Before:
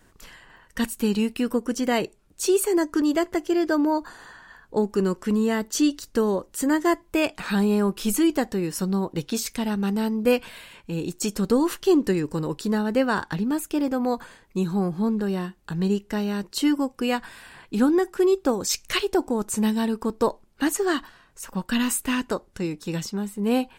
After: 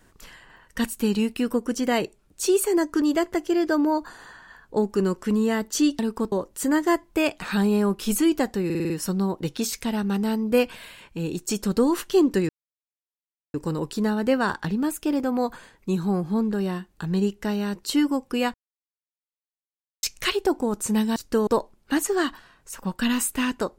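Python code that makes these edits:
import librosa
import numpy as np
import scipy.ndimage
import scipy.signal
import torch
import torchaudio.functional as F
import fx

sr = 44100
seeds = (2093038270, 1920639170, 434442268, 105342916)

y = fx.edit(x, sr, fx.swap(start_s=5.99, length_s=0.31, other_s=19.84, other_length_s=0.33),
    fx.stutter(start_s=8.63, slice_s=0.05, count=6),
    fx.insert_silence(at_s=12.22, length_s=1.05),
    fx.silence(start_s=17.22, length_s=1.49), tone=tone)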